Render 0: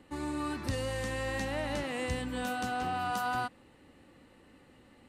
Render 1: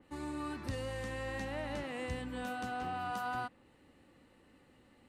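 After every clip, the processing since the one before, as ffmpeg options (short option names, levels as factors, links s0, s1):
-af "adynamicequalizer=threshold=0.00251:dfrequency=3400:dqfactor=0.7:tfrequency=3400:tqfactor=0.7:attack=5:release=100:ratio=0.375:range=2.5:mode=cutabove:tftype=highshelf,volume=0.562"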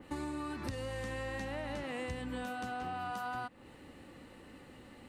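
-af "acompressor=threshold=0.00501:ratio=10,volume=3.16"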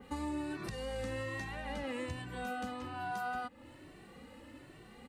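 -filter_complex "[0:a]asplit=2[s0][s1];[s1]adelay=2.1,afreqshift=1.2[s2];[s0][s2]amix=inputs=2:normalize=1,volume=1.41"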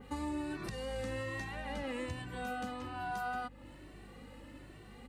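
-af "aeval=exprs='val(0)+0.00178*(sin(2*PI*50*n/s)+sin(2*PI*2*50*n/s)/2+sin(2*PI*3*50*n/s)/3+sin(2*PI*4*50*n/s)/4+sin(2*PI*5*50*n/s)/5)':c=same"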